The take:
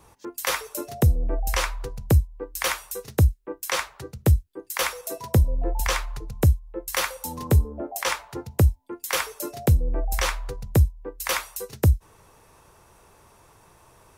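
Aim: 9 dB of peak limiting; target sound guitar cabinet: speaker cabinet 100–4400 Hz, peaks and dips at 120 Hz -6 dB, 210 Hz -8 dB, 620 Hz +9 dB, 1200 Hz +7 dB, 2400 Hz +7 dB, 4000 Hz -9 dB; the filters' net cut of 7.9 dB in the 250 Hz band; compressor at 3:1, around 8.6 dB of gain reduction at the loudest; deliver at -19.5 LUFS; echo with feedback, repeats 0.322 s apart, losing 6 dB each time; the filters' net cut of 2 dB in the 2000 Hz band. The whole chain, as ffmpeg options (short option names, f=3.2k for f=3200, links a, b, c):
-af "equalizer=f=250:t=o:g=-9,equalizer=f=2k:t=o:g=-6.5,acompressor=threshold=-25dB:ratio=3,alimiter=limit=-22dB:level=0:latency=1,highpass=100,equalizer=f=120:t=q:w=4:g=-6,equalizer=f=210:t=q:w=4:g=-8,equalizer=f=620:t=q:w=4:g=9,equalizer=f=1.2k:t=q:w=4:g=7,equalizer=f=2.4k:t=q:w=4:g=7,equalizer=f=4k:t=q:w=4:g=-9,lowpass=f=4.4k:w=0.5412,lowpass=f=4.4k:w=1.3066,aecho=1:1:322|644|966|1288|1610|1932:0.501|0.251|0.125|0.0626|0.0313|0.0157,volume=16dB"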